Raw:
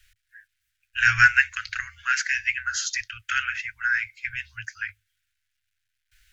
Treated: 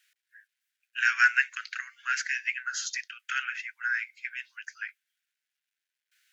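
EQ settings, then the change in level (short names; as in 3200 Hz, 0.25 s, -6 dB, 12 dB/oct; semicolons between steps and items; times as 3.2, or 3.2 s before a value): steep high-pass 320 Hz 96 dB/oct; -5.5 dB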